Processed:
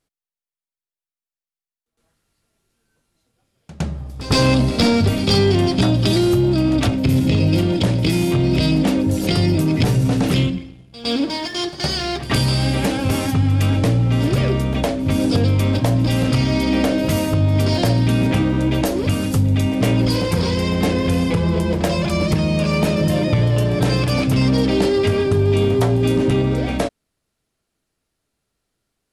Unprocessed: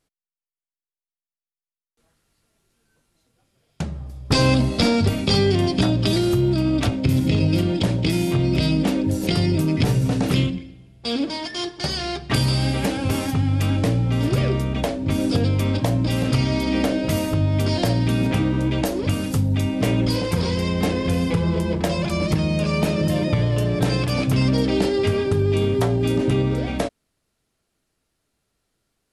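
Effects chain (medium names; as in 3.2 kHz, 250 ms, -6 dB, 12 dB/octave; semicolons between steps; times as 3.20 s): waveshaping leveller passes 1; pre-echo 111 ms -16 dB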